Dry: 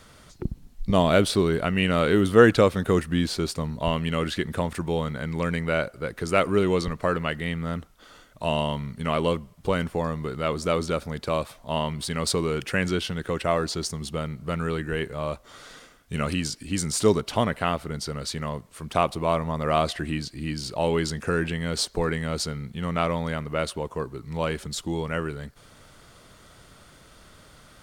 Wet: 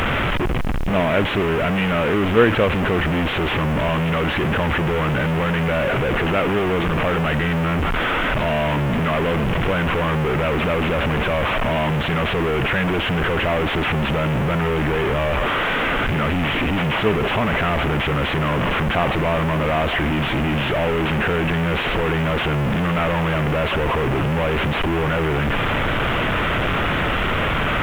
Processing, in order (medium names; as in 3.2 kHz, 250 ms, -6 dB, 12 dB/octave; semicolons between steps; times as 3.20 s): one-bit delta coder 16 kbps, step -13.5 dBFS; added noise pink -45 dBFS